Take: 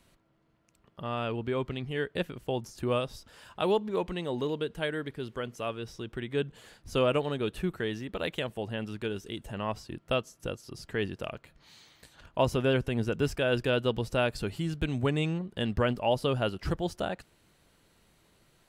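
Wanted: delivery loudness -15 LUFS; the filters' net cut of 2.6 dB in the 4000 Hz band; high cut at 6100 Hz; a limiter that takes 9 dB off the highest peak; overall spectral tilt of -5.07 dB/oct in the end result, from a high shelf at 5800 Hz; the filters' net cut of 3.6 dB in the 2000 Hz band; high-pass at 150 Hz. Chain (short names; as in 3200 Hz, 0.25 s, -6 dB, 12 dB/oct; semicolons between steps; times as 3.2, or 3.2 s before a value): HPF 150 Hz; LPF 6100 Hz; bell 2000 Hz -5.5 dB; bell 4000 Hz -3 dB; high shelf 5800 Hz +8 dB; gain +20 dB; limiter -1.5 dBFS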